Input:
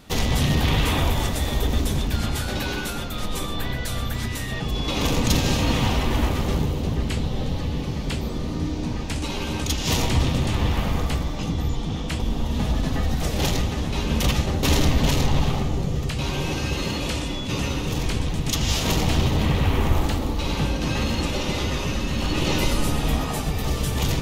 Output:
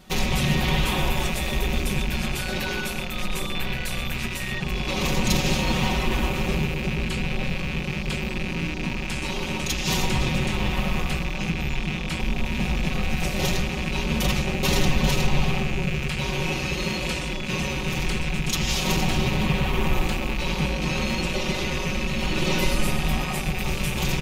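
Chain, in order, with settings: rattle on loud lows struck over -29 dBFS, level -17 dBFS; comb 5.4 ms, depth 82%; trim -3.5 dB

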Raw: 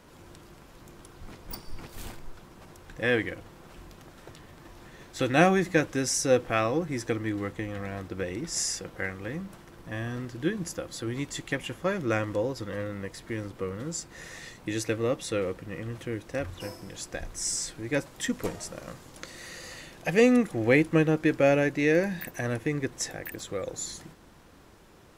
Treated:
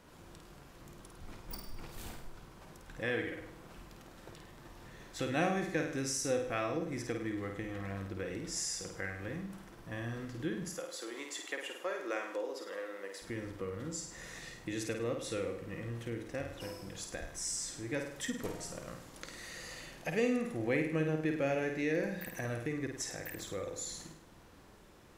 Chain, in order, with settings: 10.68–13.22 s: high-pass 370 Hz 24 dB/octave; flutter echo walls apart 8.8 m, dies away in 0.54 s; compression 1.5:1, threshold -35 dBFS, peak gain reduction 8 dB; trim -5 dB

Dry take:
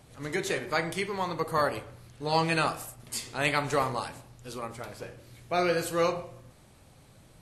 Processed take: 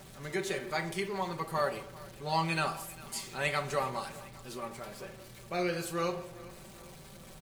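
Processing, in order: jump at every zero crossing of -41.5 dBFS; comb 5.2 ms; feedback delay 403 ms, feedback 56%, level -20 dB; trim -7 dB

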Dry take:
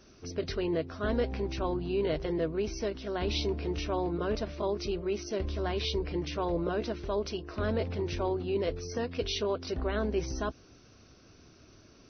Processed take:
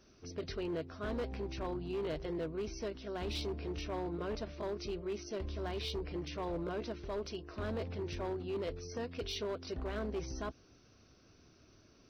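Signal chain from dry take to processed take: overload inside the chain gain 26.5 dB; trim -6.5 dB

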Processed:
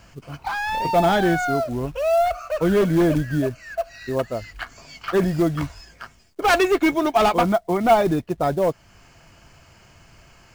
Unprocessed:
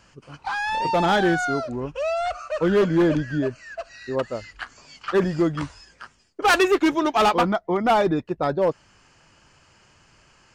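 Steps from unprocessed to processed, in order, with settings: small resonant body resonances 680/2200 Hz, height 10 dB, ringing for 60 ms; in parallel at -1.5 dB: compression 6:1, threshold -33 dBFS, peak gain reduction 21.5 dB; on the sum: bass shelf 170 Hz +8.5 dB; companded quantiser 6-bit; trim -2.5 dB

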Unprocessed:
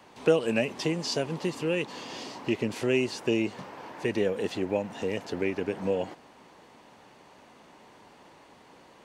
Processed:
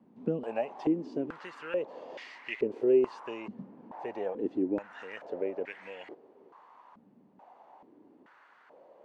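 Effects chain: step-sequenced band-pass 2.3 Hz 220–2000 Hz; trim +5.5 dB

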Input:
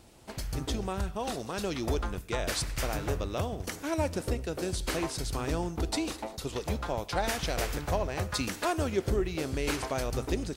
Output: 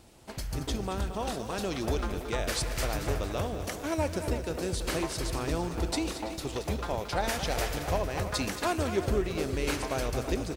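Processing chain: speakerphone echo 330 ms, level -9 dB; bit-crushed delay 226 ms, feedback 55%, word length 9-bit, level -10.5 dB

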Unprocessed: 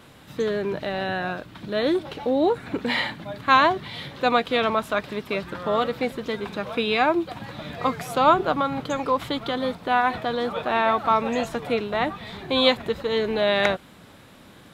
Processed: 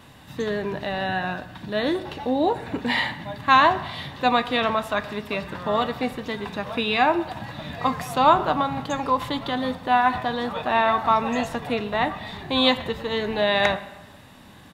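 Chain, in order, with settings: comb 1.1 ms, depth 37%; on a send: reverberation RT60 1.1 s, pre-delay 6 ms, DRR 10 dB

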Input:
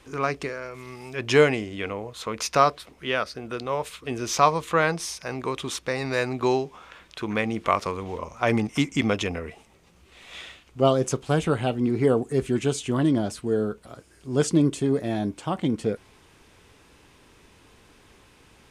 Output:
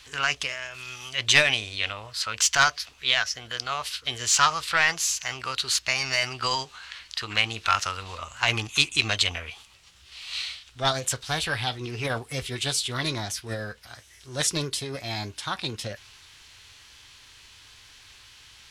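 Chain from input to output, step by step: overdrive pedal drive 11 dB, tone 2.3 kHz, clips at -3 dBFS; formant shift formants +3 st; FFT filter 110 Hz 0 dB, 170 Hz -13 dB, 470 Hz -18 dB, 5.2 kHz +7 dB, 12 kHz +2 dB; trim +4 dB

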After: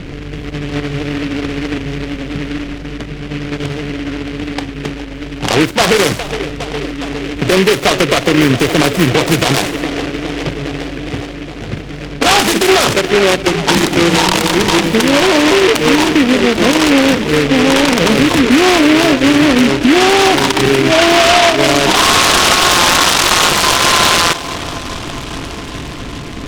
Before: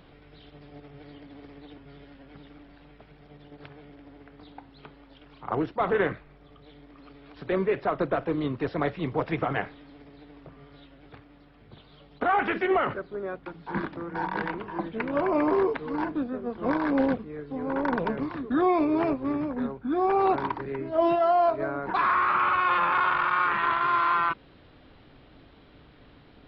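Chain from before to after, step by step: level-controlled noise filter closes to 380 Hz, open at -25 dBFS; compression 6:1, threshold -34 dBFS, peak gain reduction 14.5 dB; on a send: feedback echo behind a band-pass 411 ms, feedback 77%, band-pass 460 Hz, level -14 dB; on the sum: loudness maximiser +29.5 dB; delay time shaken by noise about 2 kHz, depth 0.18 ms; trim -1 dB

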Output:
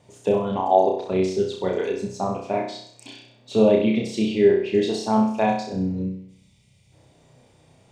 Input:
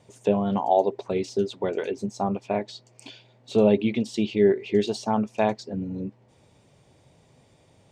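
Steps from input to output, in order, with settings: time-frequency box 6.03–6.93 s, 230–1900 Hz -15 dB; flutter echo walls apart 5.5 m, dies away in 0.6 s

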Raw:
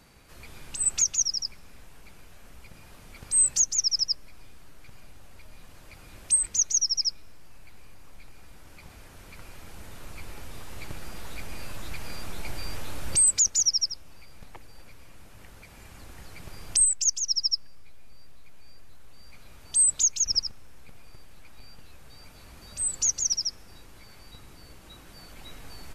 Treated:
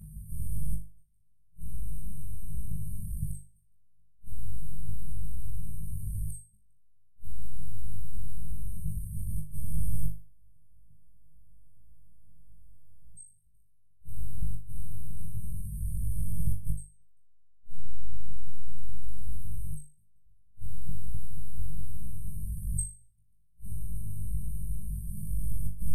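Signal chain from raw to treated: treble shelf 5.2 kHz -8.5 dB; inverted gate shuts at -31 dBFS, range -37 dB; brick-wall FIR band-stop 200–8300 Hz; on a send: flutter echo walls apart 3.4 m, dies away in 0.36 s; on the sum: trim +14 dB

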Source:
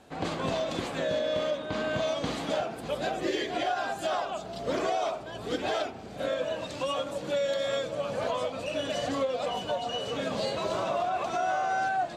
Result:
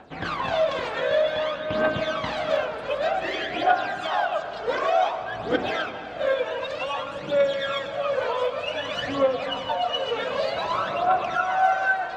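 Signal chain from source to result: low-pass 5.1 kHz 12 dB/octave; peaking EQ 1.5 kHz +11.5 dB 2.8 oct; phaser 0.54 Hz, delay 2.3 ms, feedback 67%; reverberation RT60 3.7 s, pre-delay 65 ms, DRR 9.5 dB; trim -5 dB

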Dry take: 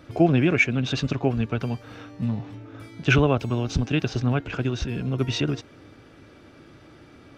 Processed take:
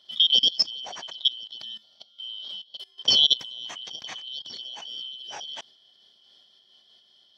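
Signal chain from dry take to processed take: four frequency bands reordered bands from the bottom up 3412; high-pass 130 Hz 12 dB/octave; treble shelf 3.2 kHz -3 dB; level held to a coarse grid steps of 21 dB; random flutter of the level, depth 55%; trim +7.5 dB

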